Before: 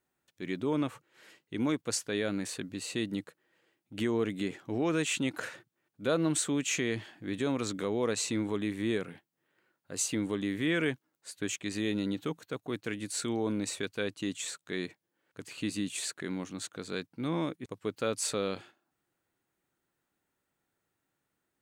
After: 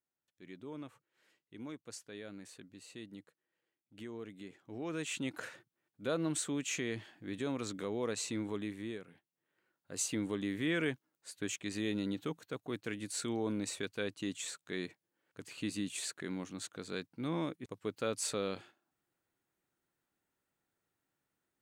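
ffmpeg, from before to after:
-af "volume=5dB,afade=t=in:st=4.57:d=0.76:silence=0.334965,afade=t=out:st=8.58:d=0.46:silence=0.354813,afade=t=in:st=9.04:d=0.96:silence=0.281838"

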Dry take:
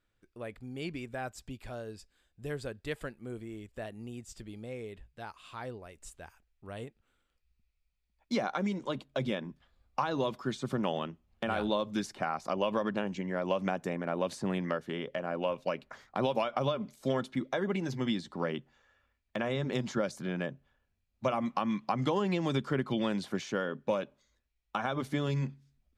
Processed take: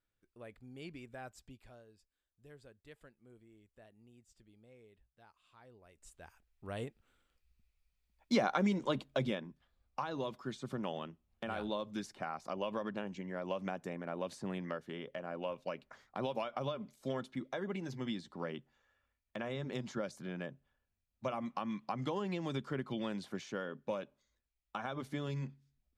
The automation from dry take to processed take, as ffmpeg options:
-af "volume=10.5dB,afade=t=out:st=1.37:d=0.5:silence=0.334965,afade=t=in:st=5.69:d=0.45:silence=0.281838,afade=t=in:st=6.14:d=0.58:silence=0.354813,afade=t=out:st=9.05:d=0.43:silence=0.375837"

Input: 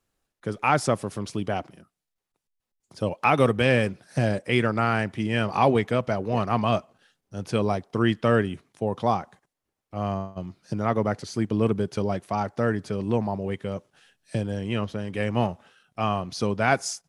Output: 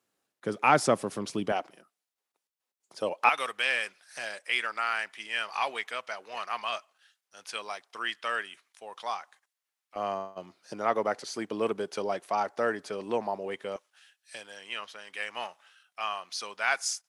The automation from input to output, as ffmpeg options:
-af "asetnsamples=n=441:p=0,asendcmd='1.52 highpass f 450;3.29 highpass f 1400;9.96 highpass f 470;13.76 highpass f 1300',highpass=210"

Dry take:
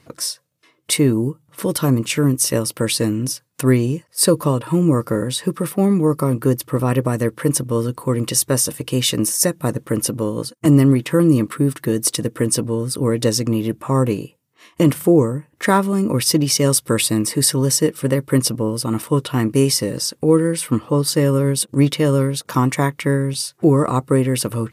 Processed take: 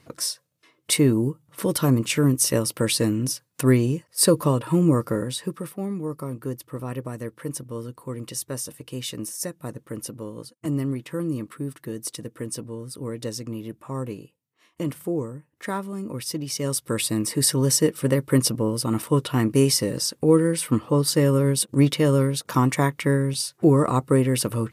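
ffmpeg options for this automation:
-af "volume=7.5dB,afade=t=out:st=4.88:d=0.89:silence=0.298538,afade=t=in:st=16.43:d=1.28:silence=0.298538"

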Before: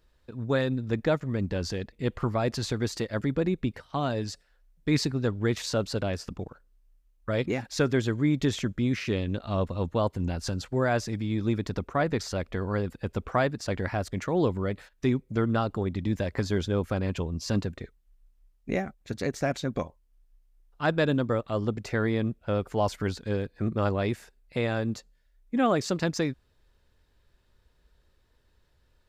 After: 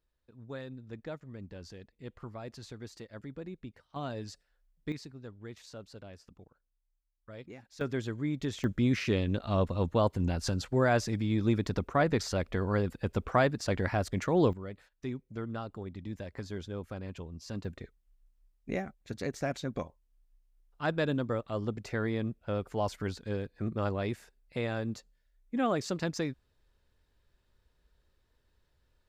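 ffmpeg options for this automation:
-af "asetnsamples=n=441:p=0,asendcmd='3.96 volume volume -9dB;4.92 volume volume -19dB;7.81 volume volume -8.5dB;8.64 volume volume -0.5dB;14.53 volume volume -12dB;17.65 volume volume -5.5dB',volume=-16dB"

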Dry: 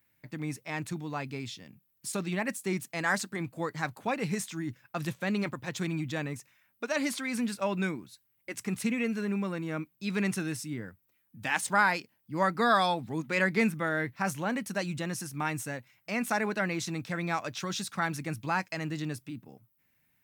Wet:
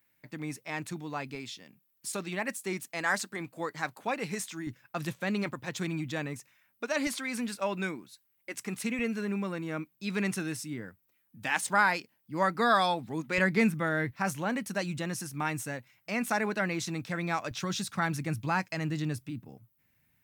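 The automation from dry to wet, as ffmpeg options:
-af "asetnsamples=n=441:p=0,asendcmd='1.35 equalizer g -14.5;4.67 equalizer g -3.5;7.07 equalizer g -12;8.99 equalizer g -4.5;13.38 equalizer g 6;14.11 equalizer g -0.5;17.51 equalizer g 7',equalizer=f=74:t=o:w=2.2:g=-7.5"

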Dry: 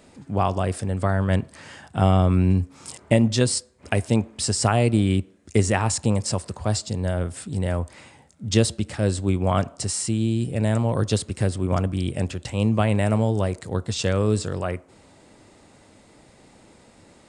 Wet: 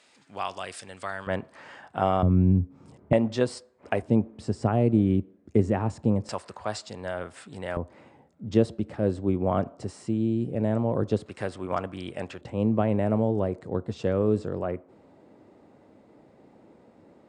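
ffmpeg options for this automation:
-af "asetnsamples=n=441:p=0,asendcmd='1.27 bandpass f 910;2.23 bandpass f 170;3.13 bandpass f 680;4.02 bandpass f 270;6.29 bandpass f 1300;7.77 bandpass f 380;11.26 bandpass f 1100;12.41 bandpass f 370',bandpass=f=3.3k:t=q:w=0.66:csg=0"

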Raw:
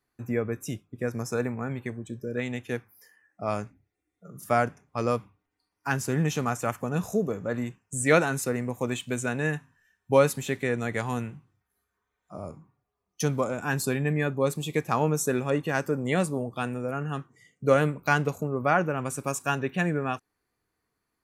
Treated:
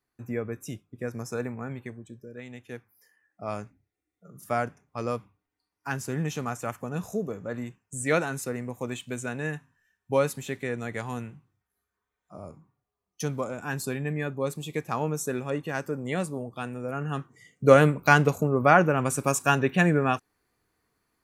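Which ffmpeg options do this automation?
-af "volume=13.5dB,afade=t=out:st=1.72:d=0.63:silence=0.375837,afade=t=in:st=2.35:d=1.19:silence=0.398107,afade=t=in:st=16.73:d=0.93:silence=0.354813"

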